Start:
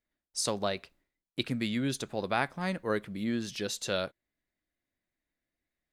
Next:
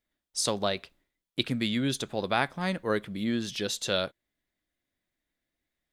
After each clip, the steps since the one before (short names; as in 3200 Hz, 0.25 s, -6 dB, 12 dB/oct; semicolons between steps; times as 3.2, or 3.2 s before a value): bell 3400 Hz +5.5 dB 0.3 oct; gain +2.5 dB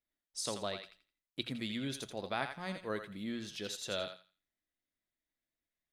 notches 60/120/180 Hz; resonator 650 Hz, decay 0.24 s, harmonics all, mix 50%; thinning echo 84 ms, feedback 25%, high-pass 830 Hz, level -6 dB; gain -4.5 dB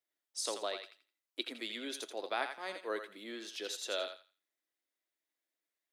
steep high-pass 300 Hz 36 dB/oct; gain +1 dB